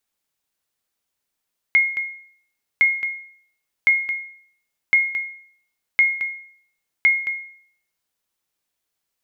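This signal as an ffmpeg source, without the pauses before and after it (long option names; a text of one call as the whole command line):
ffmpeg -f lavfi -i "aevalsrc='0.376*(sin(2*PI*2150*mod(t,1.06))*exp(-6.91*mod(t,1.06)/0.58)+0.266*sin(2*PI*2150*max(mod(t,1.06)-0.22,0))*exp(-6.91*max(mod(t,1.06)-0.22,0)/0.58))':duration=6.36:sample_rate=44100" out.wav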